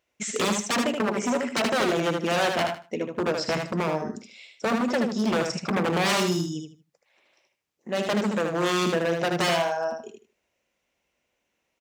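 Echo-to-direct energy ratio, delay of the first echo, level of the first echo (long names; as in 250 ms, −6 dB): −5.0 dB, 77 ms, −5.0 dB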